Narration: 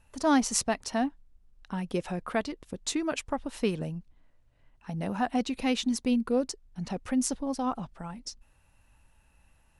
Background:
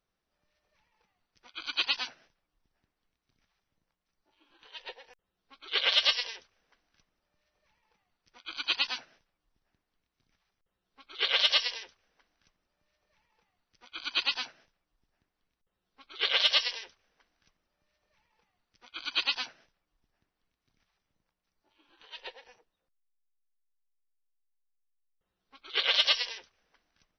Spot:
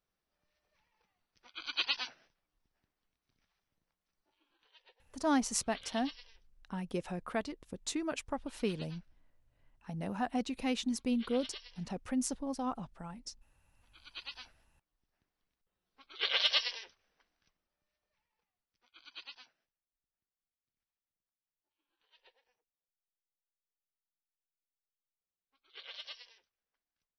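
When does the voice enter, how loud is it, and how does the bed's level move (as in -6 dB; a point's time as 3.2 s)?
5.00 s, -6.0 dB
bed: 4.2 s -4 dB
4.96 s -22.5 dB
13.76 s -22.5 dB
15.22 s -4.5 dB
17.13 s -4.5 dB
19.51 s -22 dB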